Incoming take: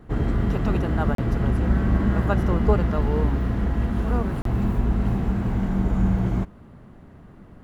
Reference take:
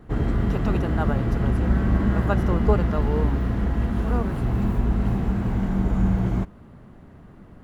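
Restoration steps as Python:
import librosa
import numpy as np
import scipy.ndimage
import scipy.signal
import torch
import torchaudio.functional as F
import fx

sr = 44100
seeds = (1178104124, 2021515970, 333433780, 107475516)

y = fx.fix_interpolate(x, sr, at_s=(1.15, 4.42), length_ms=33.0)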